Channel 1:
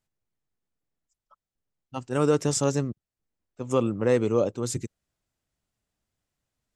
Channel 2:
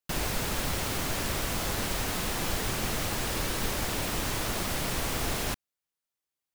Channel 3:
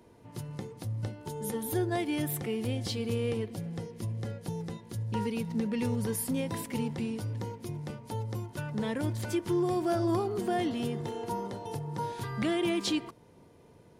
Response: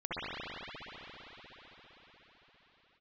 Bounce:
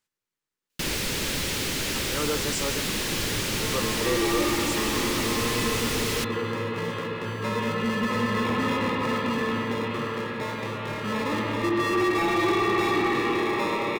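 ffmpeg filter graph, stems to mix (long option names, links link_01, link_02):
-filter_complex "[0:a]highshelf=frequency=4300:gain=10,volume=-11.5dB[link_01];[1:a]equalizer=frequency=1100:width_type=o:width=1.7:gain=-15,adelay=700,volume=2.5dB[link_02];[2:a]acrusher=samples=29:mix=1:aa=0.000001,adelay=2300,volume=-7dB,asplit=2[link_03][link_04];[link_04]volume=-3dB[link_05];[3:a]atrim=start_sample=2205[link_06];[link_05][link_06]afir=irnorm=-1:irlink=0[link_07];[link_01][link_02][link_03][link_07]amix=inputs=4:normalize=0,equalizer=frequency=700:width=4.9:gain=-13,asplit=2[link_08][link_09];[link_09]highpass=frequency=720:poles=1,volume=22dB,asoftclip=type=tanh:threshold=-13.5dB[link_10];[link_08][link_10]amix=inputs=2:normalize=0,lowpass=frequency=2500:poles=1,volume=-6dB"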